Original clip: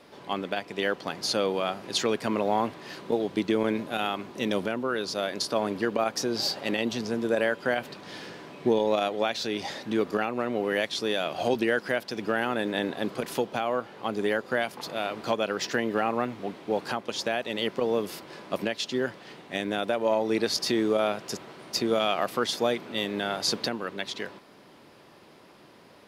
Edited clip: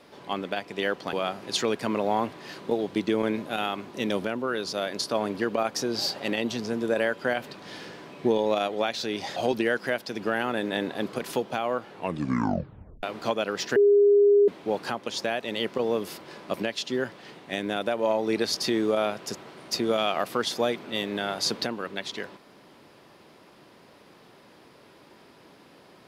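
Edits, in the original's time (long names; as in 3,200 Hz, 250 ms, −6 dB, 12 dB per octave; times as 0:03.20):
0:01.13–0:01.54: remove
0:09.77–0:11.38: remove
0:13.90: tape stop 1.15 s
0:15.78–0:16.50: beep over 407 Hz −14.5 dBFS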